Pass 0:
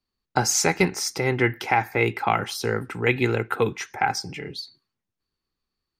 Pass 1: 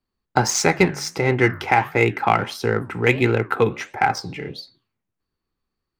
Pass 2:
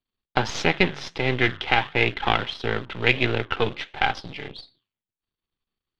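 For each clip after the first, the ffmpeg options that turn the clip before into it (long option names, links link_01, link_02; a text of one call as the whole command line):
ffmpeg -i in.wav -filter_complex "[0:a]flanger=delay=8:depth=9.6:regen=-81:speed=1.5:shape=sinusoidal,asplit=2[link_01][link_02];[link_02]adynamicsmooth=sensitivity=4:basefreq=3000,volume=3dB[link_03];[link_01][link_03]amix=inputs=2:normalize=0,volume=1dB" out.wav
ffmpeg -i in.wav -filter_complex "[0:a]aeval=exprs='if(lt(val(0),0),0.251*val(0),val(0))':channel_layout=same,asplit=2[link_01][link_02];[link_02]acrusher=bits=4:mix=0:aa=0.000001,volume=-10dB[link_03];[link_01][link_03]amix=inputs=2:normalize=0,lowpass=frequency=3400:width_type=q:width=4.1,volume=-5dB" out.wav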